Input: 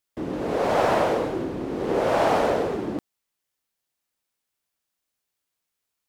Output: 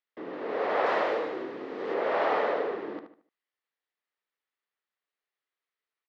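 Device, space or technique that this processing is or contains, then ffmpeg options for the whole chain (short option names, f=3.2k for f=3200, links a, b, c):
phone earpiece: -filter_complex "[0:a]highpass=340,equalizer=f=440:t=q:w=4:g=5,equalizer=f=1.2k:t=q:w=4:g=5,equalizer=f=1.9k:t=q:w=4:g=8,lowpass=f=4.2k:w=0.5412,lowpass=f=4.2k:w=1.3066,asettb=1/sr,asplit=3[a][b][c];[a]atrim=end=0.864[d];[b]atrim=start=0.86:end=1.94,asetpts=PTS-STARTPTS,afade=t=in:d=0.004:c=qsin,afade=t=out:st=1.076:d=0.004:c=qsin,aemphasis=mode=production:type=50fm[e];[c]atrim=start=1.936[f];[d][e]acrossfade=d=0.004:c1=hsin:c2=qsin[g];[g][f]acrossfade=d=0.004:c1=qsin:c2=hsin,asplit=2[h][i];[i]adelay=75,lowpass=f=3.4k:p=1,volume=-8dB,asplit=2[j][k];[k]adelay=75,lowpass=f=3.4k:p=1,volume=0.34,asplit=2[l][m];[m]adelay=75,lowpass=f=3.4k:p=1,volume=0.34,asplit=2[n][o];[o]adelay=75,lowpass=f=3.4k:p=1,volume=0.34[p];[h][j][l][n][p]amix=inputs=5:normalize=0,volume=-7.5dB"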